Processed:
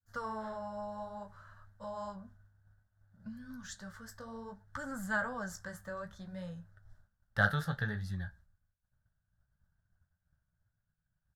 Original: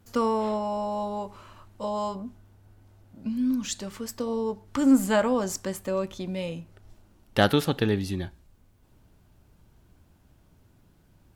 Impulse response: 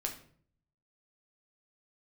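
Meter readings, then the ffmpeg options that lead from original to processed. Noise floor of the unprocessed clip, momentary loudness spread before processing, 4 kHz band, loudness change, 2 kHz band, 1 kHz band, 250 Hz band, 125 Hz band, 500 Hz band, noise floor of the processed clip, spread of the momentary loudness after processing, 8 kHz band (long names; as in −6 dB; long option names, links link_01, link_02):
−61 dBFS, 14 LU, −16.5 dB, −12.0 dB, −1.0 dB, −10.5 dB, −17.5 dB, −6.5 dB, −16.0 dB, −84 dBFS, 17 LU, −15.0 dB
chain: -af "firequalizer=gain_entry='entry(160,0);entry(300,-24);entry(590,-6);entry(1000,-7);entry(1600,9);entry(2400,-22);entry(3500,-9);entry(5400,-8);entry(8600,-10)':delay=0.05:min_phase=1,flanger=delay=9.4:depth=9.7:regen=-37:speed=0.6:shape=sinusoidal,agate=range=-33dB:threshold=-52dB:ratio=3:detection=peak,volume=-2dB"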